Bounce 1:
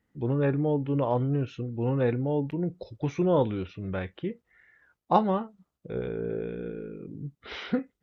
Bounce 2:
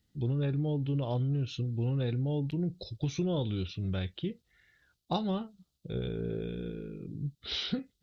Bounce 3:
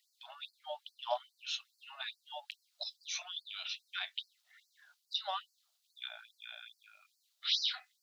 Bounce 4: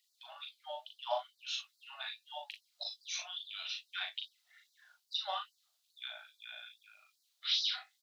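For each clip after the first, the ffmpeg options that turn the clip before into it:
-af "equalizer=f=250:t=o:w=1:g=-6,equalizer=f=500:t=o:w=1:g=-8,equalizer=f=1k:t=o:w=1:g=-12,equalizer=f=2k:t=o:w=1:g=-11,equalizer=f=4k:t=o:w=1:g=10,acompressor=threshold=-32dB:ratio=6,volume=5dB"
-af "afftfilt=real='re*gte(b*sr/1024,560*pow(4300/560,0.5+0.5*sin(2*PI*2.4*pts/sr)))':imag='im*gte(b*sr/1024,560*pow(4300/560,0.5+0.5*sin(2*PI*2.4*pts/sr)))':win_size=1024:overlap=0.75,volume=6dB"
-af "flanger=delay=2.4:depth=6.6:regen=-70:speed=0.71:shape=sinusoidal,aecho=1:1:39|58:0.631|0.178,volume=3dB"

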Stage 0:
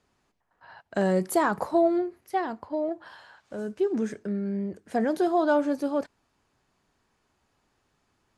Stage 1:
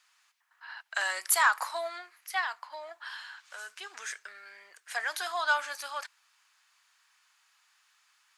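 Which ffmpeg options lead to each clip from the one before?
-filter_complex "[0:a]highpass=f=1.1k:w=0.5412,highpass=f=1.1k:w=1.3066,acrossover=split=1600[a][b];[b]acontrast=30[c];[a][c]amix=inputs=2:normalize=0,volume=4.5dB"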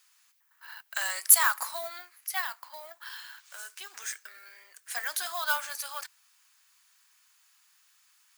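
-af "acrusher=bits=5:mode=log:mix=0:aa=0.000001,aemphasis=mode=production:type=bsi,volume=-3.5dB"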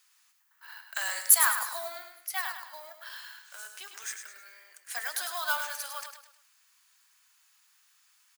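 -af "aecho=1:1:104|208|312|416:0.422|0.16|0.0609|0.0231,volume=-1.5dB"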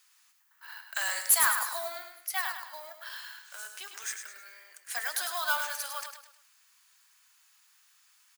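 -af "asoftclip=type=tanh:threshold=-17dB,volume=1.5dB"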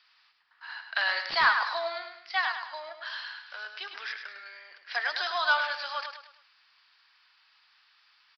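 -af "aresample=11025,aresample=44100,volume=5.5dB"

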